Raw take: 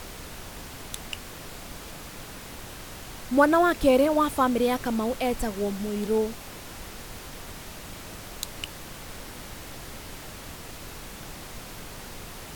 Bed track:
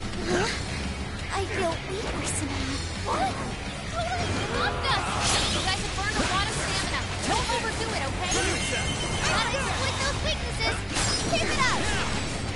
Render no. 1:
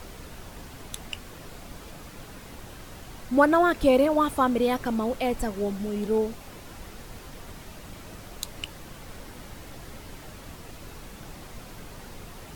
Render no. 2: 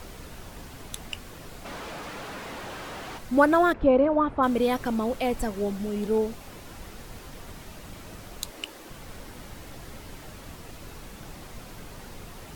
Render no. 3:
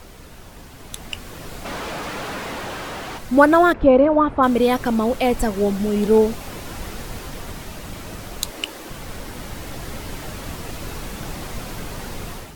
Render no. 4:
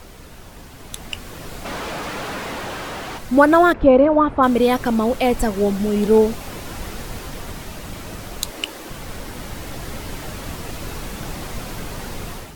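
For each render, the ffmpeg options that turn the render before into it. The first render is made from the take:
ffmpeg -i in.wav -af "afftdn=noise_reduction=6:noise_floor=-42" out.wav
ffmpeg -i in.wav -filter_complex "[0:a]asplit=3[link_01][link_02][link_03];[link_01]afade=type=out:start_time=1.64:duration=0.02[link_04];[link_02]asplit=2[link_05][link_06];[link_06]highpass=frequency=720:poles=1,volume=32dB,asoftclip=type=tanh:threshold=-28dB[link_07];[link_05][link_07]amix=inputs=2:normalize=0,lowpass=frequency=1700:poles=1,volume=-6dB,afade=type=in:start_time=1.64:duration=0.02,afade=type=out:start_time=3.17:duration=0.02[link_08];[link_03]afade=type=in:start_time=3.17:duration=0.02[link_09];[link_04][link_08][link_09]amix=inputs=3:normalize=0,asplit=3[link_10][link_11][link_12];[link_10]afade=type=out:start_time=3.72:duration=0.02[link_13];[link_11]lowpass=1600,afade=type=in:start_time=3.72:duration=0.02,afade=type=out:start_time=4.42:duration=0.02[link_14];[link_12]afade=type=in:start_time=4.42:duration=0.02[link_15];[link_13][link_14][link_15]amix=inputs=3:normalize=0,asettb=1/sr,asplit=3[link_16][link_17][link_18];[link_16]atrim=end=8.504[link_19];[link_17]atrim=start=8.5:end=8.9,asetpts=PTS-STARTPTS,afade=type=in:duration=0.004:curve=qsin,afade=type=out:start_time=0.396:duration=0.004:curve=qsin,lowshelf=frequency=210:width_type=q:width=1.5:gain=-12[link_20];[link_18]atrim=start=8.896[link_21];[link_19][link_20]acrossfade=duration=0.004:curve1=hsin:curve2=qsin[link_22];[link_22][link_21]acrossfade=duration=0.004:curve1=qsin:curve2=hsin" out.wav
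ffmpeg -i in.wav -af "dynaudnorm=framelen=770:gausssize=3:maxgain=11.5dB" out.wav
ffmpeg -i in.wav -af "volume=1dB,alimiter=limit=-2dB:level=0:latency=1" out.wav

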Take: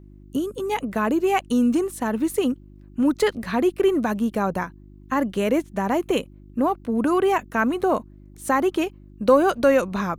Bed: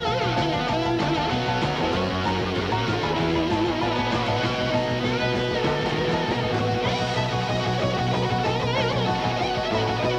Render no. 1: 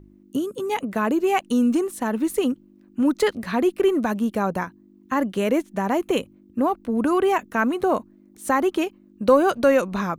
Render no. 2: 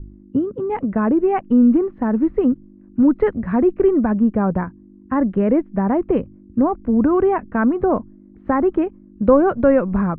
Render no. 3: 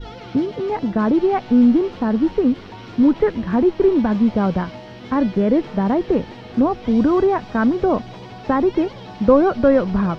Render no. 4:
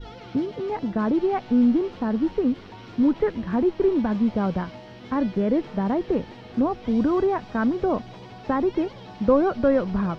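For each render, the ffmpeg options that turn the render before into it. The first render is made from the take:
ffmpeg -i in.wav -af "bandreject=frequency=50:width_type=h:width=4,bandreject=frequency=100:width_type=h:width=4,bandreject=frequency=150:width_type=h:width=4" out.wav
ffmpeg -i in.wav -af "lowpass=frequency=2000:width=0.5412,lowpass=frequency=2000:width=1.3066,aemphasis=mode=reproduction:type=riaa" out.wav
ffmpeg -i in.wav -i bed.wav -filter_complex "[1:a]volume=-13.5dB[link_01];[0:a][link_01]amix=inputs=2:normalize=0" out.wav
ffmpeg -i in.wav -af "volume=-5.5dB" out.wav

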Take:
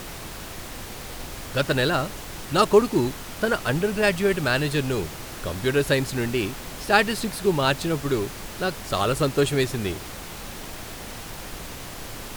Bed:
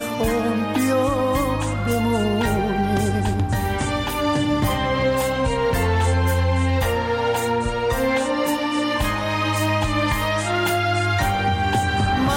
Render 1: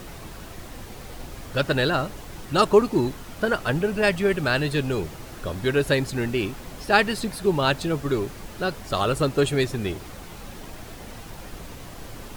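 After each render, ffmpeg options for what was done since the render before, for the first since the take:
ffmpeg -i in.wav -af "afftdn=noise_reduction=7:noise_floor=-37" out.wav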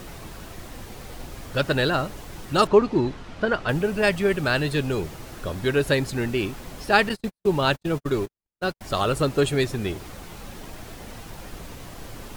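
ffmpeg -i in.wav -filter_complex "[0:a]asettb=1/sr,asplit=3[link_01][link_02][link_03];[link_01]atrim=end=2.674[link_04];[link_02]atrim=start=2.67:end=3.69,asetpts=PTS-STARTPTS,afade=type=in:duration=0.004:curve=qsin,afade=type=out:start_time=1.016:duration=0.004:curve=qsin,lowpass=4400[link_05];[link_03]atrim=start=3.686[link_06];[link_04][link_05]acrossfade=duration=0.004:curve1=hsin:curve2=qsin[link_07];[link_07][link_06]acrossfade=duration=0.004:curve1=qsin:curve2=hsin,asettb=1/sr,asplit=3[link_08][link_09][link_10];[link_08]atrim=end=7.094[link_11];[link_09]atrim=start=7.09:end=8.81,asetpts=PTS-STARTPTS,afade=type=in:duration=0.004:curve=qsin,afade=type=out:start_time=1.716:duration=0.004:curve=qsin,agate=range=-60dB:threshold=-28dB:ratio=16:release=100:detection=peak[link_12];[link_10]atrim=start=8.806[link_13];[link_11][link_12]acrossfade=duration=0.004:curve1=hsin:curve2=qsin[link_14];[link_14][link_13]acrossfade=duration=0.004:curve1=qsin:curve2=hsin" out.wav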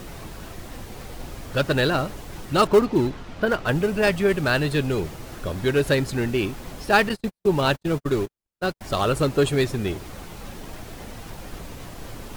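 ffmpeg -i in.wav -filter_complex "[0:a]asplit=2[link_01][link_02];[link_02]acrusher=samples=15:mix=1:aa=0.000001:lfo=1:lforange=24:lforate=3.7,volume=-12dB[link_03];[link_01][link_03]amix=inputs=2:normalize=0,asoftclip=type=tanh:threshold=-6dB" out.wav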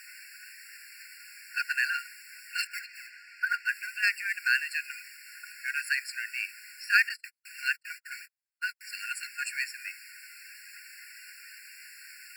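ffmpeg -i in.wav -filter_complex "[0:a]acrossover=split=210|1000[link_01][link_02][link_03];[link_01]asoftclip=type=tanh:threshold=-34.5dB[link_04];[link_04][link_02][link_03]amix=inputs=3:normalize=0,afftfilt=real='re*eq(mod(floor(b*sr/1024/1400),2),1)':imag='im*eq(mod(floor(b*sr/1024/1400),2),1)':win_size=1024:overlap=0.75" out.wav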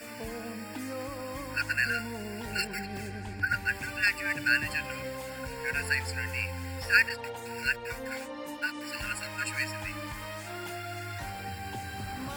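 ffmpeg -i in.wav -i bed.wav -filter_complex "[1:a]volume=-18.5dB[link_01];[0:a][link_01]amix=inputs=2:normalize=0" out.wav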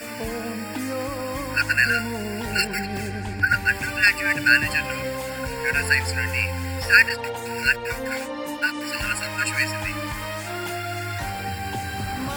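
ffmpeg -i in.wav -af "volume=9dB,alimiter=limit=-3dB:level=0:latency=1" out.wav

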